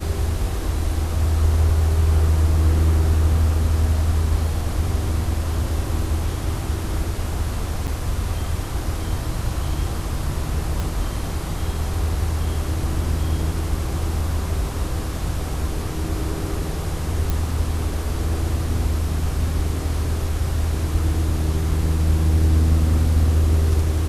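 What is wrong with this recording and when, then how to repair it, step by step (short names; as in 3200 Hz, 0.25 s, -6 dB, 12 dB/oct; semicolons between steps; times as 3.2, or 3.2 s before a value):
7.87–7.88 gap 6.9 ms
10.8 pop
17.3 pop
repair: de-click; interpolate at 7.87, 6.9 ms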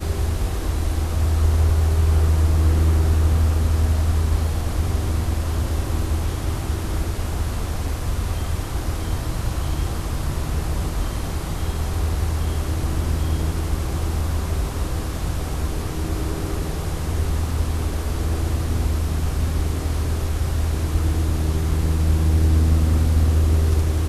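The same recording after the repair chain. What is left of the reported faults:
10.8 pop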